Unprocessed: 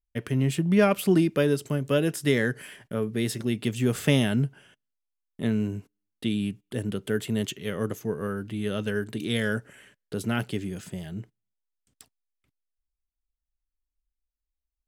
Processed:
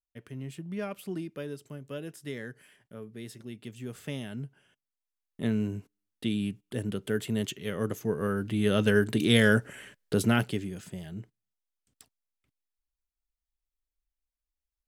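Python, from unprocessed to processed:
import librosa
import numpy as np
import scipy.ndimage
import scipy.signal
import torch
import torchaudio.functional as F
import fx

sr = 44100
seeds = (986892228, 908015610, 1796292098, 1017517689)

y = fx.gain(x, sr, db=fx.line((4.23, -15.0), (5.45, -2.5), (7.72, -2.5), (8.89, 5.5), (10.2, 5.5), (10.71, -4.0)))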